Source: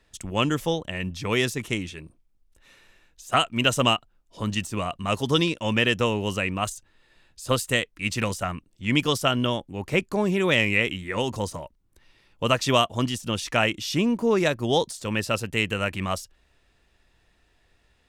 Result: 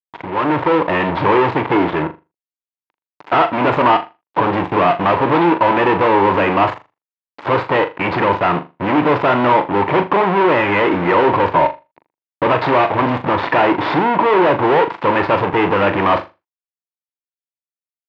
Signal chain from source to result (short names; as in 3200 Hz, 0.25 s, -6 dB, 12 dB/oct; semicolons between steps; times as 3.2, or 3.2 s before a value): median filter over 15 samples; sample leveller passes 1; in parallel at -0.5 dB: compressor, threshold -35 dBFS, peak gain reduction 18.5 dB; on the sum: fuzz box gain 39 dB, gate -42 dBFS; AGC gain up to 11.5 dB; speaker cabinet 190–2800 Hz, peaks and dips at 220 Hz -10 dB, 320 Hz +4 dB, 940 Hz +10 dB; on a send: flutter echo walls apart 6.9 m, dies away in 0.25 s; on the sum: gain -8 dB